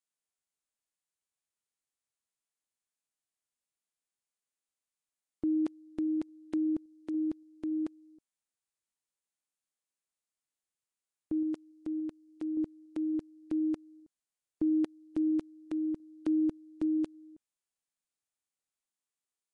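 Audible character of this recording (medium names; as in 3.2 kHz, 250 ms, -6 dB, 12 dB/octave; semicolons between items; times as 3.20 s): random-step tremolo; Nellymoser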